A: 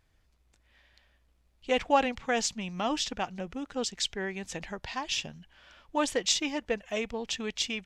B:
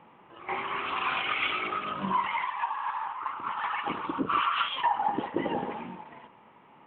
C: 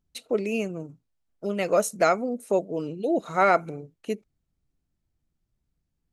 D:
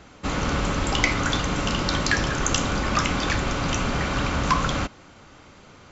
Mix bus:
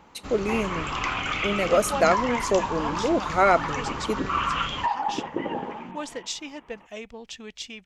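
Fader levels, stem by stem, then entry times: −6.0, +0.5, +1.0, −11.5 decibels; 0.00, 0.00, 0.00, 0.00 seconds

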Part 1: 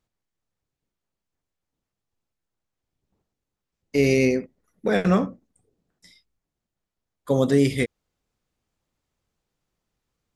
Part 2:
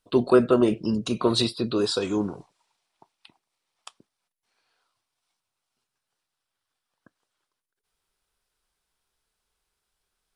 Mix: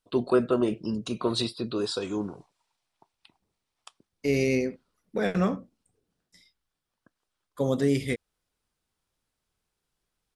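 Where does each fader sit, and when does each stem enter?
−5.5, −5.0 decibels; 0.30, 0.00 seconds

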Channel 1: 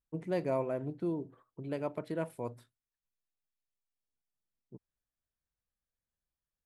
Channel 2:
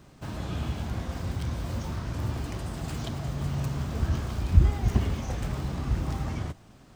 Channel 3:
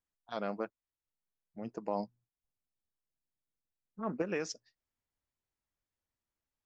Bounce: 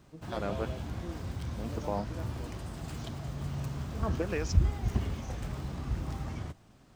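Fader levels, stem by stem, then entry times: −10.5, −6.0, +1.0 decibels; 0.00, 0.00, 0.00 seconds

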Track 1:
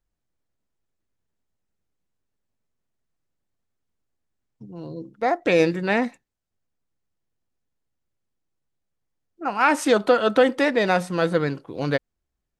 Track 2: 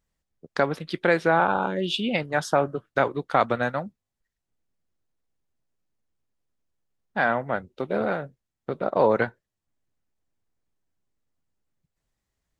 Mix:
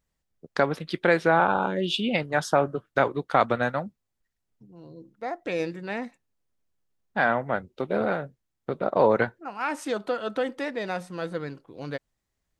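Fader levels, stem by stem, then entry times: −10.5, 0.0 decibels; 0.00, 0.00 seconds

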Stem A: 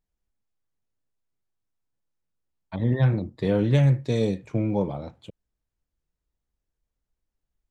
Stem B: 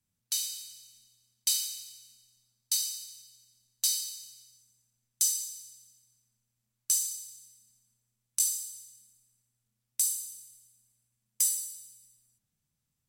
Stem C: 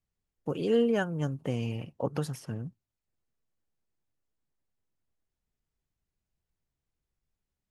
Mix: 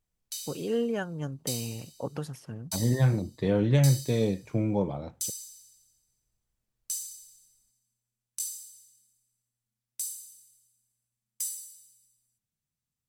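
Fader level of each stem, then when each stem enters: −2.5, −7.0, −3.5 decibels; 0.00, 0.00, 0.00 seconds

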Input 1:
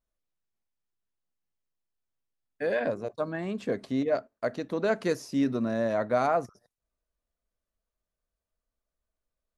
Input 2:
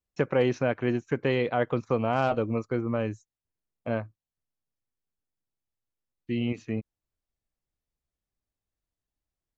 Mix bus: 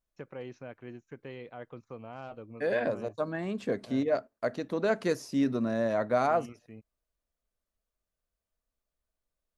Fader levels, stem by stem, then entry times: −1.0, −18.0 decibels; 0.00, 0.00 seconds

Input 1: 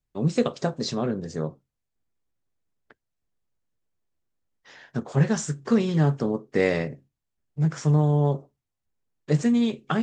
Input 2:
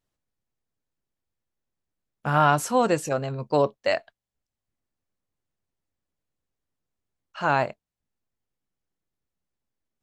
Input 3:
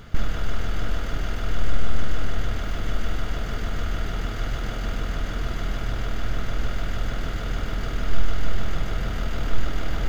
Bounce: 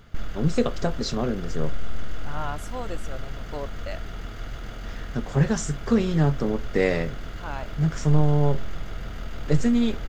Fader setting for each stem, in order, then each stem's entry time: 0.0, −13.5, −7.5 decibels; 0.20, 0.00, 0.00 seconds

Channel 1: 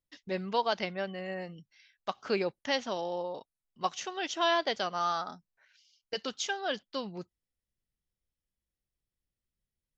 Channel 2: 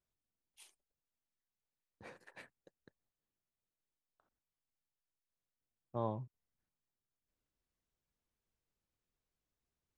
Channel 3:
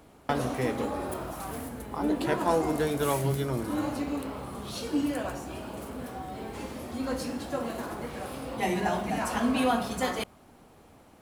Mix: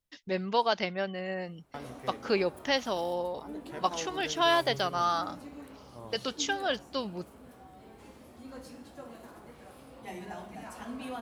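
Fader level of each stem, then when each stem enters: +2.5, −9.5, −14.0 decibels; 0.00, 0.00, 1.45 seconds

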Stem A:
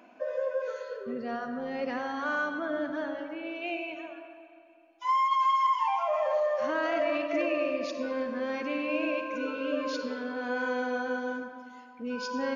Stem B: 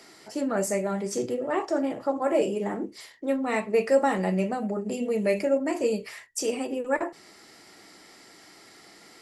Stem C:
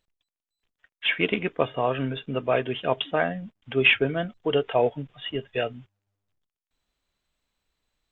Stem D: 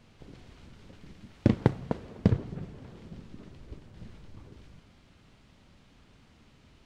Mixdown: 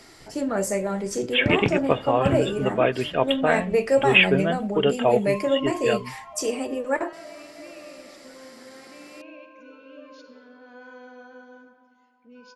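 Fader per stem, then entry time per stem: −14.0, +1.5, +2.5, −2.5 decibels; 0.25, 0.00, 0.30, 0.00 seconds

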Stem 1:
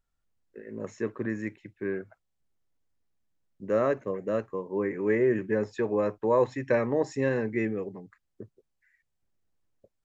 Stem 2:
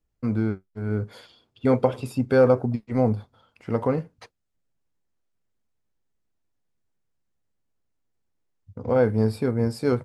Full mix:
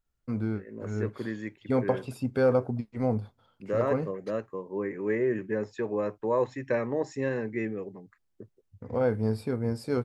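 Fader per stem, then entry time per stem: −3.0, −6.0 decibels; 0.00, 0.05 seconds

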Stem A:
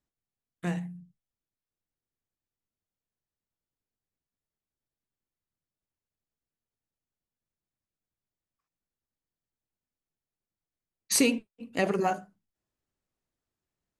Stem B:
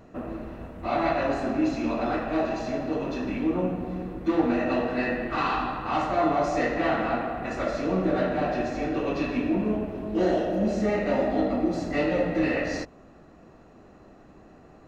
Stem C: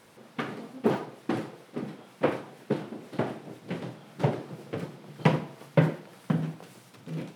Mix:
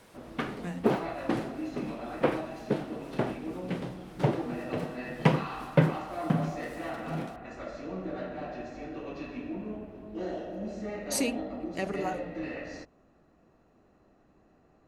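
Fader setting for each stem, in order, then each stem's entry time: −6.5, −12.0, −0.5 decibels; 0.00, 0.00, 0.00 seconds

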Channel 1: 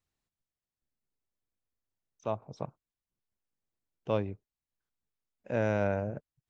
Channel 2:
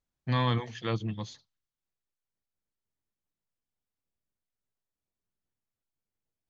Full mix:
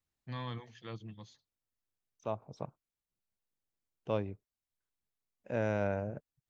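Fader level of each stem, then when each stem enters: −3.5, −13.5 decibels; 0.00, 0.00 seconds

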